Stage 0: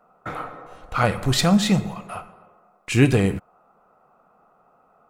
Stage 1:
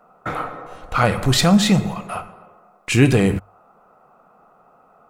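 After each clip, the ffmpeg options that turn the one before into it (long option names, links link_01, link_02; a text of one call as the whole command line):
ffmpeg -i in.wav -filter_complex "[0:a]bandreject=frequency=50:width_type=h:width=6,bandreject=frequency=100:width_type=h:width=6,asplit=2[link_01][link_02];[link_02]alimiter=limit=-15.5dB:level=0:latency=1,volume=-1dB[link_03];[link_01][link_03]amix=inputs=2:normalize=0" out.wav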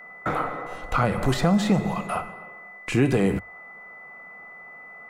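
ffmpeg -i in.wav -filter_complex "[0:a]acrossover=split=320|1500[link_01][link_02][link_03];[link_01]acompressor=threshold=-22dB:ratio=4[link_04];[link_02]acompressor=threshold=-24dB:ratio=4[link_05];[link_03]acompressor=threshold=-38dB:ratio=4[link_06];[link_04][link_05][link_06]amix=inputs=3:normalize=0,aeval=exprs='val(0)+0.00708*sin(2*PI*2000*n/s)':channel_layout=same,equalizer=frequency=100:width_type=o:width=0.33:gain=-9.5,volume=1.5dB" out.wav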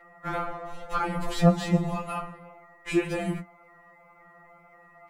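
ffmpeg -i in.wav -af "flanger=delay=7.7:depth=6.3:regen=-49:speed=1.9:shape=triangular,afftfilt=real='re*2.83*eq(mod(b,8),0)':imag='im*2.83*eq(mod(b,8),0)':win_size=2048:overlap=0.75,volume=2.5dB" out.wav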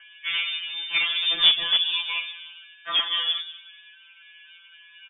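ffmpeg -i in.wav -filter_complex "[0:a]asplit=2[link_01][link_02];[link_02]aeval=exprs='(mod(8.41*val(0)+1,2)-1)/8.41':channel_layout=same,volume=-5dB[link_03];[link_01][link_03]amix=inputs=2:normalize=0,asplit=2[link_04][link_05];[link_05]adelay=192,lowpass=frequency=1500:poles=1,volume=-15.5dB,asplit=2[link_06][link_07];[link_07]adelay=192,lowpass=frequency=1500:poles=1,volume=0.36,asplit=2[link_08][link_09];[link_09]adelay=192,lowpass=frequency=1500:poles=1,volume=0.36[link_10];[link_04][link_06][link_08][link_10]amix=inputs=4:normalize=0,lowpass=frequency=3100:width_type=q:width=0.5098,lowpass=frequency=3100:width_type=q:width=0.6013,lowpass=frequency=3100:width_type=q:width=0.9,lowpass=frequency=3100:width_type=q:width=2.563,afreqshift=-3600" out.wav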